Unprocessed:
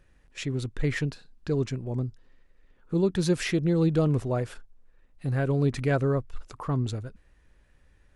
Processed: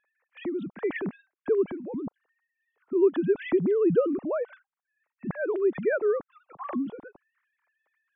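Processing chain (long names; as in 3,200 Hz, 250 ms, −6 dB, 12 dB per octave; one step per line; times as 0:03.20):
three sine waves on the formant tracks
low-pass filter 1,400 Hz 6 dB per octave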